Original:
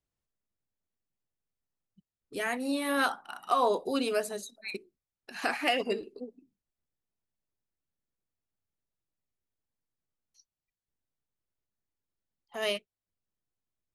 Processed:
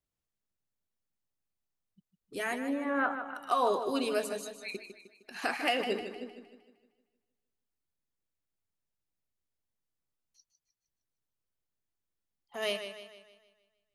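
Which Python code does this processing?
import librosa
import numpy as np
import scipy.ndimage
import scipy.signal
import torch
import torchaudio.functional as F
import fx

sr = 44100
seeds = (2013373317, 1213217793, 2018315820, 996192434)

y = fx.lowpass(x, sr, hz=2000.0, slope=24, at=(2.56, 3.35))
y = fx.echo_warbled(y, sr, ms=154, feedback_pct=47, rate_hz=2.8, cents=52, wet_db=-9.5)
y = y * 10.0 ** (-2.0 / 20.0)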